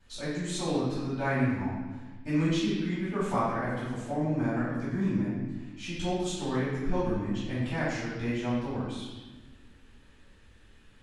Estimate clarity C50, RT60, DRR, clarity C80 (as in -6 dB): -1.5 dB, 1.3 s, -14.5 dB, 2.0 dB